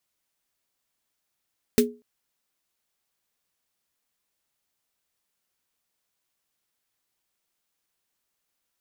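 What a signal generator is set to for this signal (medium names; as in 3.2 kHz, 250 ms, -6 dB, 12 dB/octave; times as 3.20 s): snare drum length 0.24 s, tones 240 Hz, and 420 Hz, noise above 1.6 kHz, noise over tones -6 dB, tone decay 0.29 s, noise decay 0.11 s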